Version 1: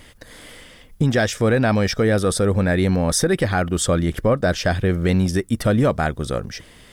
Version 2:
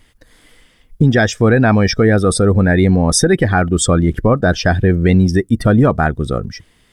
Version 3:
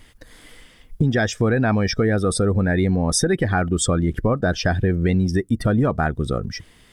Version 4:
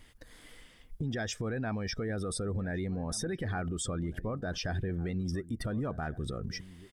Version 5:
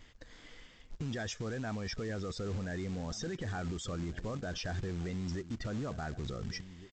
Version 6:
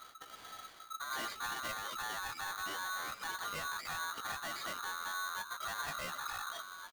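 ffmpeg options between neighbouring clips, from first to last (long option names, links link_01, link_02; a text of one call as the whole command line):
ffmpeg -i in.wav -af "afftdn=noise_reduction=15:noise_floor=-28,equalizer=frequency=560:width=4.8:gain=-6.5,volume=7dB" out.wav
ffmpeg -i in.wav -af "acompressor=threshold=-26dB:ratio=2,volume=2.5dB" out.wav
ffmpeg -i in.wav -filter_complex "[0:a]alimiter=limit=-18.5dB:level=0:latency=1:release=50,asplit=2[link_01][link_02];[link_02]adelay=1458,volume=-17dB,highshelf=frequency=4000:gain=-32.8[link_03];[link_01][link_03]amix=inputs=2:normalize=0,volume=-8dB" out.wav
ffmpeg -i in.wav -af "alimiter=level_in=7dB:limit=-24dB:level=0:latency=1:release=10,volume=-7dB,aresample=16000,acrusher=bits=4:mode=log:mix=0:aa=0.000001,aresample=44100" out.wav
ffmpeg -i in.wav -af "aresample=8000,asoftclip=type=tanh:threshold=-39.5dB,aresample=44100,flanger=delay=15.5:depth=2.1:speed=0.38,aeval=exprs='val(0)*sgn(sin(2*PI*1300*n/s))':channel_layout=same,volume=5.5dB" out.wav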